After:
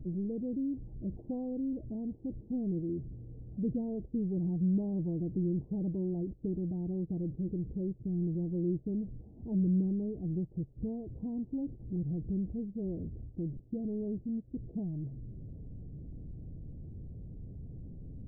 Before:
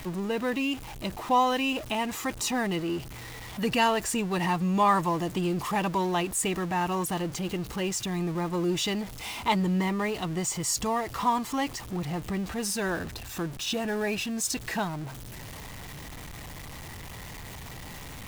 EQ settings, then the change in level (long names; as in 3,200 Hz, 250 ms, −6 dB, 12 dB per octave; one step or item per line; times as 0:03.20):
Gaussian smoothing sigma 24 samples
0.0 dB